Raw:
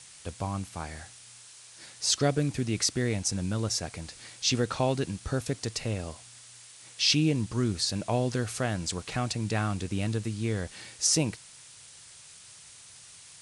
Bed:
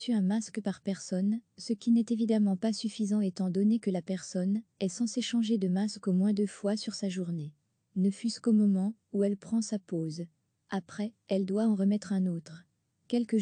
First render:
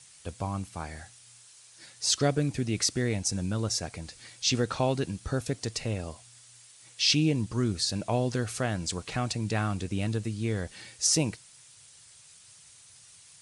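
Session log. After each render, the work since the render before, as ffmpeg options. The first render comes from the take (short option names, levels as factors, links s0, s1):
-af "afftdn=nr=6:nf=-51"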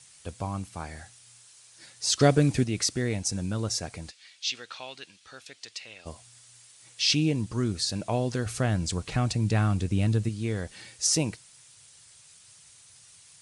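-filter_complex "[0:a]asettb=1/sr,asplit=3[s0][s1][s2];[s0]atrim=end=2.194[s3];[s1]atrim=start=2.19:end=2.64,asetpts=PTS-STARTPTS,afade=t=in:d=0.004:c=qsin,afade=t=out:st=0.446:d=0.004:c=qsin,acontrast=49[s4];[s2]atrim=start=2.636[s5];[s3][s4]acrossfade=d=0.004:c1=hsin:c2=qsin[s6];[s6][s5]acrossfade=d=0.004:c1=qsin:c2=hsin,asplit=3[s7][s8][s9];[s7]afade=t=out:st=4.1:d=0.02[s10];[s8]bandpass=f=3100:t=q:w=1.2,afade=t=in:st=4.1:d=0.02,afade=t=out:st=6.05:d=0.02[s11];[s9]afade=t=in:st=6.05:d=0.02[s12];[s10][s11][s12]amix=inputs=3:normalize=0,asettb=1/sr,asplit=3[s13][s14][s15];[s13]atrim=end=8.464[s16];[s14]atrim=start=8.46:end=10.29,asetpts=PTS-STARTPTS,afade=t=in:d=0.004:c=qsin,afade=t=out:st=1.826:d=0.004:c=qsin,lowshelf=f=190:g=9[s17];[s15]atrim=start=10.286[s18];[s16][s17]acrossfade=d=0.004:c1=hsin:c2=qsin[s19];[s19][s18]acrossfade=d=0.004:c1=qsin:c2=hsin"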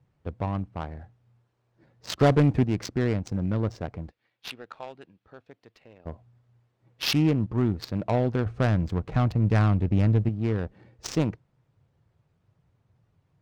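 -af "aeval=exprs='0.398*(cos(1*acos(clip(val(0)/0.398,-1,1)))-cos(1*PI/2))+0.0501*(cos(5*acos(clip(val(0)/0.398,-1,1)))-cos(5*PI/2))':c=same,adynamicsmooth=sensitivity=1.5:basefreq=530"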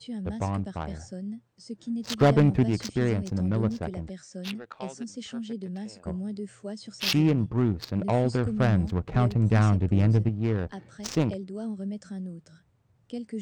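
-filter_complex "[1:a]volume=0.473[s0];[0:a][s0]amix=inputs=2:normalize=0"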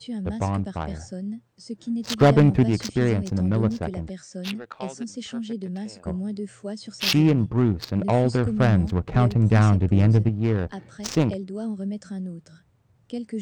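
-af "volume=1.58"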